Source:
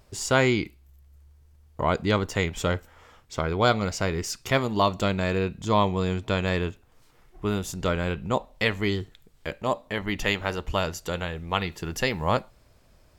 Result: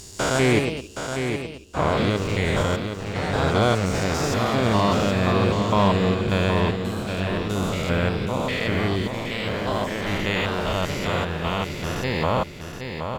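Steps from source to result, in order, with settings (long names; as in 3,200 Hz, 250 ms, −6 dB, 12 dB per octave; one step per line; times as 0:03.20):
spectrum averaged block by block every 200 ms
leveller curve on the samples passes 1
delay with pitch and tempo change per echo 169 ms, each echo +2 semitones, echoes 2, each echo −6 dB
repeating echo 771 ms, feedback 33%, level −7 dB
level +1.5 dB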